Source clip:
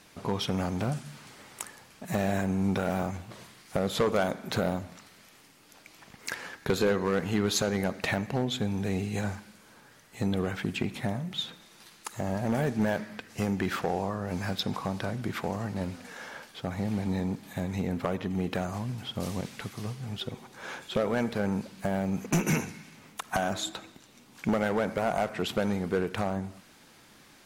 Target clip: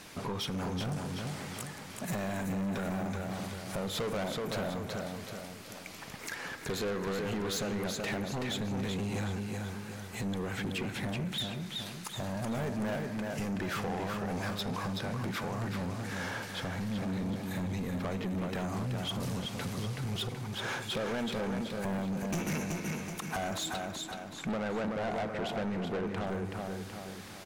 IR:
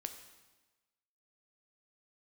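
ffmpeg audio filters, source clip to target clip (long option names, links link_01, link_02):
-filter_complex "[0:a]alimiter=level_in=2.5dB:limit=-24dB:level=0:latency=1:release=440,volume=-2.5dB,asettb=1/sr,asplit=3[link_01][link_02][link_03];[link_01]atrim=end=23.804[link_04];[link_02]atrim=start=23.8:end=26.27,asetpts=PTS-STARTPTS,afade=type=in:duration=0.004:curve=qsin,afade=type=out:start_time=2.466:duration=0.004:curve=qsin,lowpass=frequency=2300:poles=1[link_05];[link_03]atrim=start=26.266[link_06];[link_04][link_05]acrossfade=duration=0.004:curve1=hsin:curve2=qsin[link_07];[link_07][link_06]acrossfade=duration=0.004:curve1=qsin:curve2=hsin,aecho=1:1:377|754|1131|1508|1885:0.501|0.21|0.0884|0.0371|0.0156,asoftclip=type=tanh:threshold=-36.5dB,volume=6.5dB"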